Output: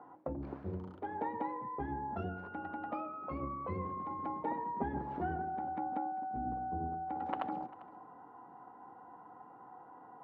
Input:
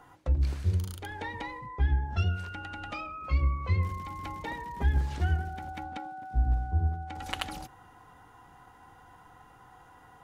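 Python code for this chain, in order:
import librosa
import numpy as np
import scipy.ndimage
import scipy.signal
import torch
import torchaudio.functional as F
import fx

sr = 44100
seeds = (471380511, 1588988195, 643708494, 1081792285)

y = scipy.signal.sosfilt(scipy.signal.cheby1(2, 1.0, [230.0, 930.0], 'bandpass', fs=sr, output='sos'), x)
y = y + 10.0 ** (-19.5 / 20.0) * np.pad(y, (int(396 * sr / 1000.0), 0))[:len(y)]
y = y * 10.0 ** (3.0 / 20.0)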